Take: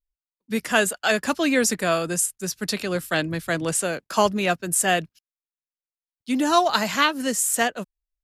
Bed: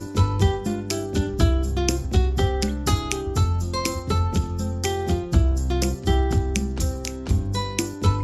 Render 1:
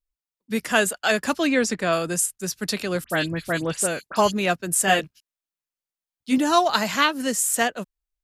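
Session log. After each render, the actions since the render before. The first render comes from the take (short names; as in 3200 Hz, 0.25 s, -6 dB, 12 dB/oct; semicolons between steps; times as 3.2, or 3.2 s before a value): 1.47–1.93 air absorption 67 m; 3.04–4.32 dispersion highs, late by 65 ms, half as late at 2900 Hz; 4.86–6.38 doubler 15 ms -2 dB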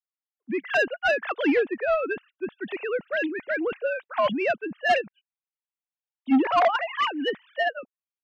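sine-wave speech; soft clip -14.5 dBFS, distortion -11 dB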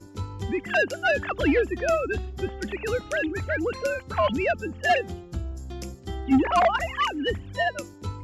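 add bed -13.5 dB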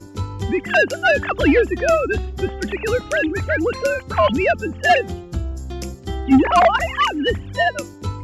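gain +7 dB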